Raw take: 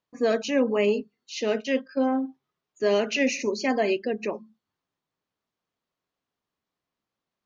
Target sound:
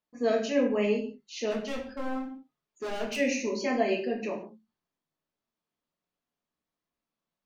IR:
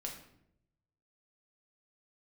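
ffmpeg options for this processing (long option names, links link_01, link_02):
-filter_complex "[0:a]asplit=3[link_01][link_02][link_03];[link_01]afade=type=out:start_time=1.5:duration=0.02[link_04];[link_02]asoftclip=type=hard:threshold=-26.5dB,afade=type=in:start_time=1.5:duration=0.02,afade=type=out:start_time=3.16:duration=0.02[link_05];[link_03]afade=type=in:start_time=3.16:duration=0.02[link_06];[link_04][link_05][link_06]amix=inputs=3:normalize=0[link_07];[1:a]atrim=start_sample=2205,afade=type=out:start_time=0.27:duration=0.01,atrim=end_sample=12348,asetrate=52920,aresample=44100[link_08];[link_07][link_08]afir=irnorm=-1:irlink=0,volume=-1dB"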